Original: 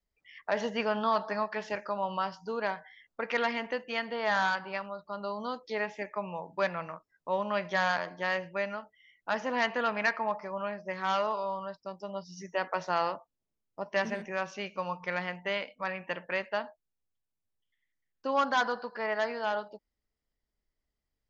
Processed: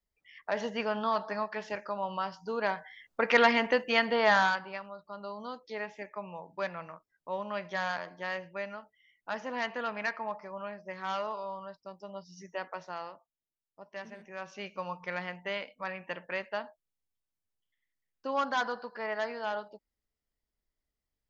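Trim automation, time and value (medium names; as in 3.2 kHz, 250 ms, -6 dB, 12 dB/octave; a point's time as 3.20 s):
2.25 s -2 dB
3.31 s +7 dB
4.20 s +7 dB
4.79 s -5 dB
12.52 s -5 dB
13.11 s -13 dB
14.15 s -13 dB
14.65 s -3 dB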